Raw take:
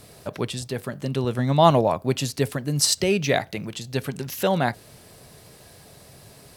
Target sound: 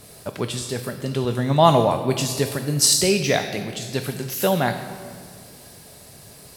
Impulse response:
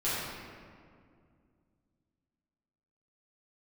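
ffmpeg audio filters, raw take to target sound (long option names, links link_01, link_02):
-filter_complex "[0:a]asplit=2[link_01][link_02];[link_02]bass=frequency=250:gain=-3,treble=frequency=4000:gain=8[link_03];[1:a]atrim=start_sample=2205,highshelf=frequency=3700:gain=10.5,adelay=5[link_04];[link_03][link_04]afir=irnorm=-1:irlink=0,volume=-18dB[link_05];[link_01][link_05]amix=inputs=2:normalize=0,volume=1dB"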